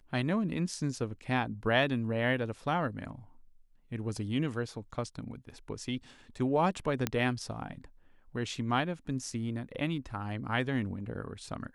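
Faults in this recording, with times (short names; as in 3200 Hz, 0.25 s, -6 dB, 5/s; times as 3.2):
7.07 pop -13 dBFS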